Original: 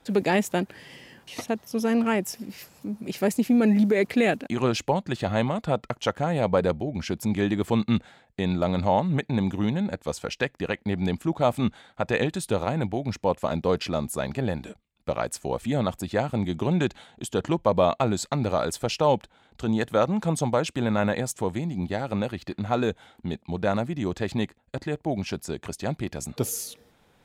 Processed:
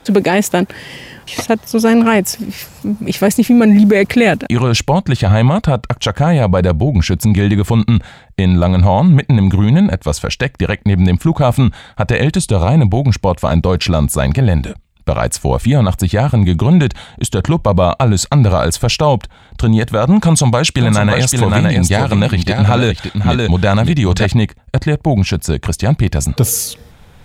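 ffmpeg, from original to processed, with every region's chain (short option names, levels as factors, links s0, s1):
-filter_complex "[0:a]asettb=1/sr,asplit=3[s0][s1][s2];[s0]atrim=end=12.374[s3];[s1]atrim=start=12.37:end=12.91,asetpts=PTS-STARTPTS,afade=t=in:d=0.004:c=qsin,afade=t=out:st=0.536:d=0.004:c=qsin,lowpass=f=11000:w=0.5412,lowpass=f=11000:w=1.3066,equalizer=f=1600:t=o:w=0.4:g=-12[s4];[s2]atrim=start=12.906[s5];[s3][s4]acrossfade=d=0.004:c1=hsin:c2=qsin[s6];[s6][s5]acrossfade=d=0.004:c1=qsin:c2=hsin,asettb=1/sr,asplit=3[s7][s8][s9];[s7]atrim=end=20.244[s10];[s8]atrim=start=20.24:end=24.26,asetpts=PTS-STARTPTS,afade=t=in:d=0.004:c=qsin,afade=t=out:st=4.016:d=0.004:c=qsin,equalizer=f=4500:t=o:w=2.9:g=7,aecho=1:1:565:0.473,atrim=end_sample=177282[s11];[s9]atrim=start=24.256[s12];[s10][s11]acrossfade=d=0.004:c1=hsin:c2=qsin[s13];[s13][s12]acrossfade=d=0.004:c1=qsin:c2=hsin,asubboost=boost=4.5:cutoff=130,alimiter=level_in=6.31:limit=0.891:release=50:level=0:latency=1,volume=0.891"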